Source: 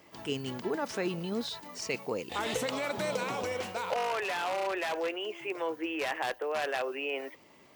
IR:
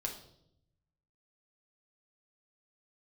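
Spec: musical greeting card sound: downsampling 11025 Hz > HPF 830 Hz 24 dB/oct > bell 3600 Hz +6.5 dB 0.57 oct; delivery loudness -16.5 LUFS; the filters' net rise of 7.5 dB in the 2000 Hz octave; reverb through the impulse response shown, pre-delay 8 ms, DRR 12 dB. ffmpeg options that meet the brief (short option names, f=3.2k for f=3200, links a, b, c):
-filter_complex "[0:a]equalizer=f=2k:t=o:g=8.5,asplit=2[a][b];[1:a]atrim=start_sample=2205,adelay=8[c];[b][c]afir=irnorm=-1:irlink=0,volume=-12.5dB[d];[a][d]amix=inputs=2:normalize=0,aresample=11025,aresample=44100,highpass=f=830:w=0.5412,highpass=f=830:w=1.3066,equalizer=f=3.6k:t=o:w=0.57:g=6.5,volume=14dB"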